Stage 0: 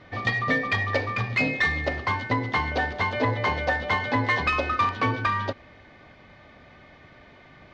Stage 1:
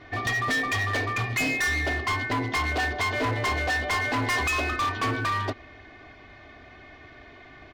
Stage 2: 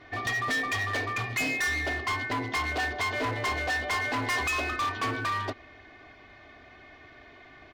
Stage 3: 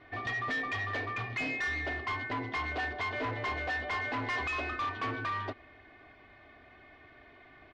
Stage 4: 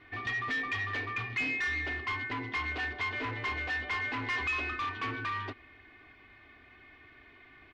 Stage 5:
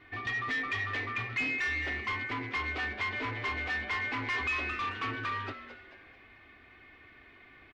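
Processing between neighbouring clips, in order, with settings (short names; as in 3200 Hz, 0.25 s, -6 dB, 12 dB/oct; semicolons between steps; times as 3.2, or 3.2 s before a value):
comb 2.8 ms, depth 64%; overloaded stage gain 24 dB; gain +1 dB
low shelf 240 Hz -4.5 dB; gain -2.5 dB
LPF 3400 Hz 12 dB/oct; gain -4.5 dB
fifteen-band EQ 160 Hz -3 dB, 630 Hz -10 dB, 2500 Hz +4 dB
frequency-shifting echo 0.219 s, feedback 42%, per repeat +140 Hz, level -12 dB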